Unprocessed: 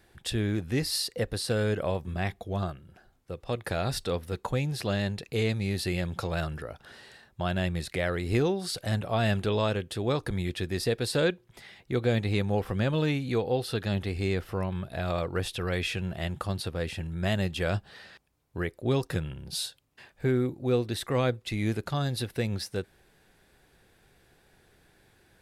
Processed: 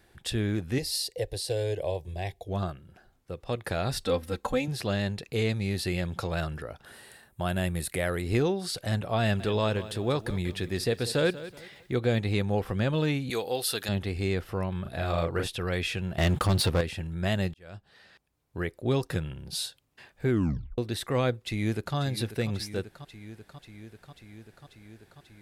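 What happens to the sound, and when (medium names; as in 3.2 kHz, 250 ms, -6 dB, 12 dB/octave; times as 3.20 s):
0.78–2.48 s: static phaser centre 540 Hz, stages 4
4.06–4.68 s: comb 3.8 ms, depth 89%
6.85–8.22 s: resonant high shelf 7.5 kHz +10.5 dB, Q 1.5
9.21–11.94 s: bit-crushed delay 188 ms, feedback 35%, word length 9-bit, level -15 dB
13.30–13.89 s: RIAA curve recording
14.82–15.47 s: doubling 36 ms -4 dB
16.18–16.81 s: waveshaping leveller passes 3
17.54–18.68 s: fade in
20.30 s: tape stop 0.48 s
21.40–21.96 s: echo throw 540 ms, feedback 80%, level -12 dB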